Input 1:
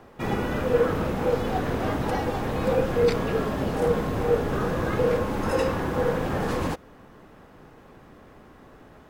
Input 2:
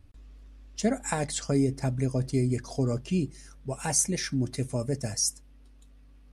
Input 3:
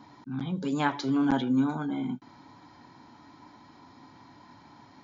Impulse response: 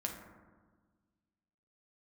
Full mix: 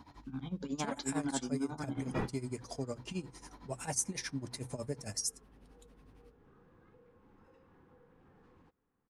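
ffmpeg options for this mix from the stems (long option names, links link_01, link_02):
-filter_complex "[0:a]aemphasis=mode=reproduction:type=75fm,acompressor=threshold=-26dB:ratio=5,equalizer=frequency=620:width_type=o:width=0.28:gain=-12.5,adelay=1950,volume=-3.5dB[link_01];[1:a]highpass=60,acrossover=split=490|3000[link_02][link_03][link_04];[link_02]acompressor=threshold=-29dB:ratio=6[link_05];[link_05][link_03][link_04]amix=inputs=3:normalize=0,volume=1dB[link_06];[2:a]volume=-1dB,asplit=2[link_07][link_08];[link_08]apad=whole_len=486884[link_09];[link_01][link_09]sidechaingate=range=-29dB:threshold=-44dB:ratio=16:detection=peak[link_10];[link_06][link_07]amix=inputs=2:normalize=0,tremolo=f=11:d=0.87,acompressor=threshold=-43dB:ratio=1.5,volume=0dB[link_11];[link_10][link_11]amix=inputs=2:normalize=0,bandreject=frequency=60:width_type=h:width=6,bandreject=frequency=120:width_type=h:width=6"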